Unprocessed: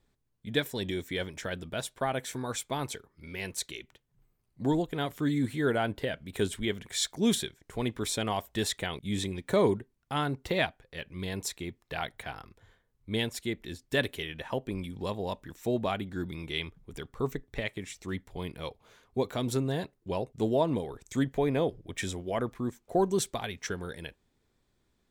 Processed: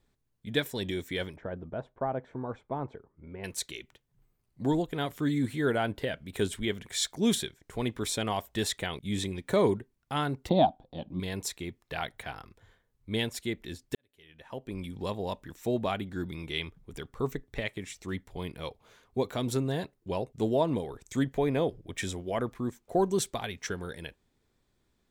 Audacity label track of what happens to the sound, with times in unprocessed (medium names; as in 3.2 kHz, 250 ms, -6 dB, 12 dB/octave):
1.360000	3.440000	Chebyshev low-pass 860 Hz
10.490000	11.200000	FFT filter 110 Hz 0 dB, 190 Hz +9 dB, 300 Hz +11 dB, 430 Hz -4 dB, 760 Hz +13 dB, 1.8 kHz -20 dB, 2.5 kHz -16 dB, 3.6 kHz 0 dB, 5.9 kHz -16 dB, 10 kHz -23 dB
13.950000	14.880000	fade in quadratic